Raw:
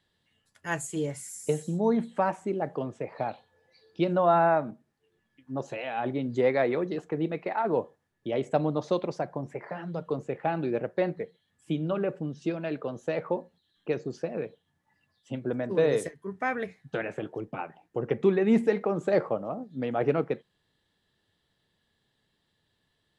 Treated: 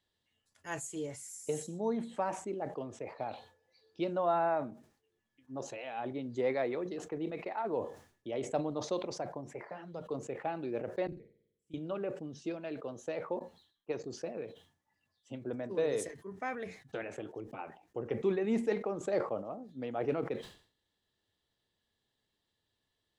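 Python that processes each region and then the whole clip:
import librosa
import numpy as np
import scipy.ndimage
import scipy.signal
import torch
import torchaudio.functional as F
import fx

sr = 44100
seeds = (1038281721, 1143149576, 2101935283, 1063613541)

y = fx.chain(x, sr, fx.tone_stack(knobs='10-0-1'),
    fx.room_flutter(wall_m=8.5, rt60_s=0.89), at=(11.07, 11.74))
y = fx.chain(y, sr, fx.peak_eq(hz=960.0, db=6.5, octaves=0.75),
    fx.upward_expand(threshold_db=-39.0, expansion=2.5), at=(13.39, 14.04))
y = fx.graphic_eq_15(y, sr, hz=(160, 1600, 6300), db=(-7, -3, 4))
y = fx.sustainer(y, sr, db_per_s=120.0)
y = F.gain(torch.from_numpy(y), -7.5).numpy()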